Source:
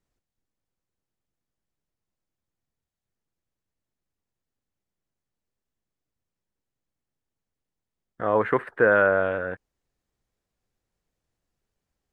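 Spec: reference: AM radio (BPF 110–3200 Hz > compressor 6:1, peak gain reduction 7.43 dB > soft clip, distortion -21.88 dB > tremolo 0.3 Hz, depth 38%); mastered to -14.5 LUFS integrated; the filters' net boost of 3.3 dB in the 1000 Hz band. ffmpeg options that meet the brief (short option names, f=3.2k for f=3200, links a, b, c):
-af "highpass=110,lowpass=3.2k,equalizer=f=1k:t=o:g=4.5,acompressor=threshold=-20dB:ratio=6,asoftclip=threshold=-13dB,tremolo=f=0.3:d=0.38,volume=16dB"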